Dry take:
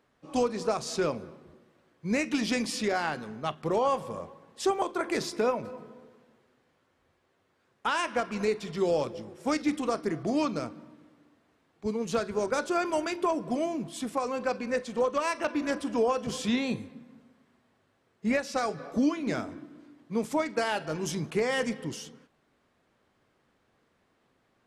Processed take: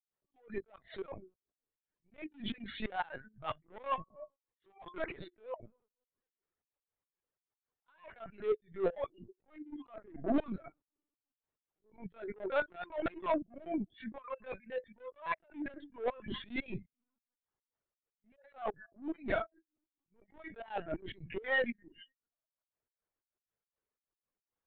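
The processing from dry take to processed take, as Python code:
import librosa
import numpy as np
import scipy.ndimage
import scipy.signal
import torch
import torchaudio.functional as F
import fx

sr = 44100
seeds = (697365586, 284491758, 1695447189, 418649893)

y = scipy.signal.medfilt(x, 9)
y = fx.hum_notches(y, sr, base_hz=50, count=6)
y = fx.noise_reduce_blind(y, sr, reduce_db=28)
y = fx.highpass(y, sr, hz=230.0, slope=6)
y = fx.dereverb_blind(y, sr, rt60_s=0.7)
y = 10.0 ** (-30.5 / 20.0) * np.tanh(y / 10.0 ** (-30.5 / 20.0))
y = fx.step_gate(y, sr, bpm=179, pattern='.xx.xxx.x', floor_db=-24.0, edge_ms=4.5)
y = fx.lpc_vocoder(y, sr, seeds[0], excitation='pitch_kept', order=16)
y = fx.attack_slew(y, sr, db_per_s=210.0)
y = y * librosa.db_to_amplitude(6.5)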